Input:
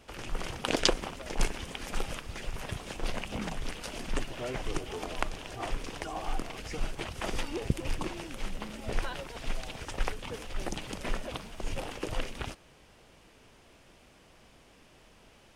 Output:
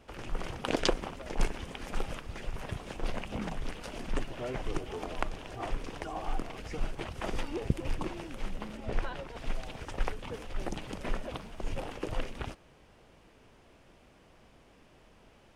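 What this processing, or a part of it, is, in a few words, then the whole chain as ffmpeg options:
behind a face mask: -filter_complex "[0:a]highshelf=f=2.5k:g=-8,asettb=1/sr,asplit=3[a][b][c];[a]atrim=end=8.774[d];[b]atrim=start=8.77:end=9.36,asetpts=PTS-STARTPTS,afade=t=in:d=0.004:c=qsin,afade=t=out:st=0.586:d=0.004:c=qsin,highshelf=f=7.8k:g=-8.5[e];[c]atrim=start=9.356[f];[d][e]acrossfade=d=0.004:c1=hsin:c2=qsin[g];[g][f]acrossfade=d=0.004:c1=qsin:c2=hsin"

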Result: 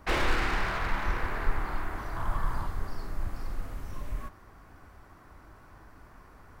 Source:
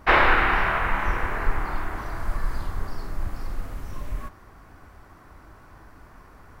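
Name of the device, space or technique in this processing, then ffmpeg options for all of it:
one-band saturation: -filter_complex "[0:a]asettb=1/sr,asplit=3[a][b][c];[a]atrim=end=2.164[d];[b]atrim=start=2.16:end=2.67,asetpts=PTS-STARTPTS,afade=t=in:d=0.004:c=qsin,afade=t=out:st=0.506:d=0.004:c=qsin,equalizer=f=125:t=o:w=1:g=6,equalizer=f=1k:t=o:w=1:g=9,equalizer=f=4k:t=o:w=1:g=-4[e];[c]atrim=start=2.666[f];[d][e]acrossfade=d=0.004:c1=hsin:c2=qsin[g];[g][f]acrossfade=d=0.004:c1=qsin:c2=hsin,acrossover=split=450|3100[h][i][j];[i]asoftclip=type=tanh:threshold=-27dB[k];[h][k][j]amix=inputs=3:normalize=0,volume=-4dB"

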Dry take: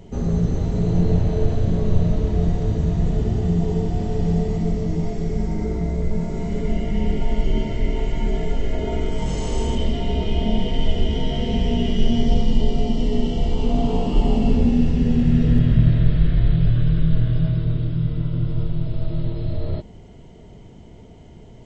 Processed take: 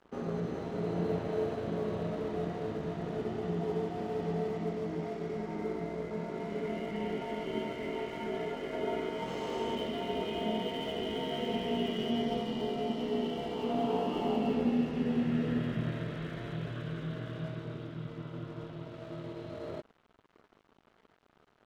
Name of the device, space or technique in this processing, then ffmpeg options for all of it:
pocket radio on a weak battery: -af "highpass=310,lowpass=3.1k,aeval=exprs='sgn(val(0))*max(abs(val(0))-0.00398,0)':c=same,equalizer=f=1.3k:t=o:w=0.56:g=4,volume=-4dB"

